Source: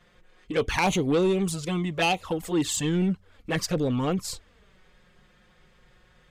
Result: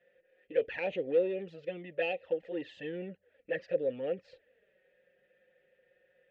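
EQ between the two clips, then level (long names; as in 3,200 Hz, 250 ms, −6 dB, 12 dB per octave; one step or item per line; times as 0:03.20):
formant filter e
high-frequency loss of the air 260 metres
+3.5 dB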